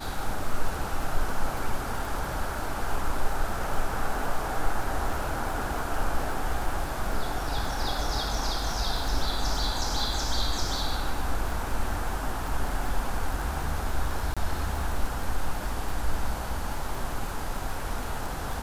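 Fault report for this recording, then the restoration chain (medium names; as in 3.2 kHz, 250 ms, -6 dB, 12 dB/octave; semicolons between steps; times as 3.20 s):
crackle 50 per s -32 dBFS
14.34–14.37 s: dropout 26 ms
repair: de-click; interpolate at 14.34 s, 26 ms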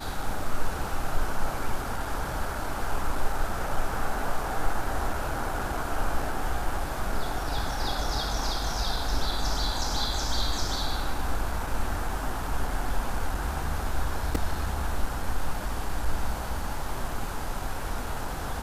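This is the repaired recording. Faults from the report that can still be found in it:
nothing left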